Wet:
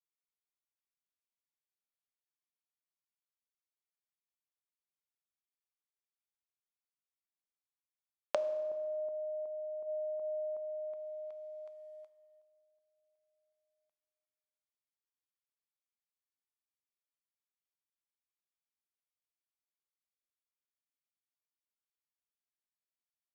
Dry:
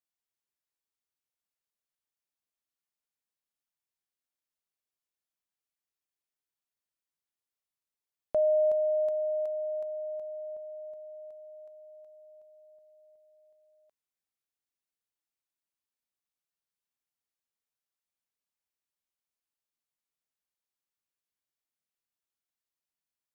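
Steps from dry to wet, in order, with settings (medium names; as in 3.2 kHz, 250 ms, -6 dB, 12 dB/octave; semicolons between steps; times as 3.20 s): tone controls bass -9 dB, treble -9 dB; thinning echo 359 ms, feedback 39%, high-pass 420 Hz, level -17 dB; in parallel at +3 dB: compression, threshold -34 dBFS, peak gain reduction 10.5 dB; on the sum: comb 0.9 ms, depth 33%; gate -46 dBFS, range -20 dB; tilt EQ +2.5 dB/octave; low-pass that closes with the level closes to 440 Hz, closed at -29.5 dBFS; on a send at -11 dB: reverberation RT60 1.9 s, pre-delay 3 ms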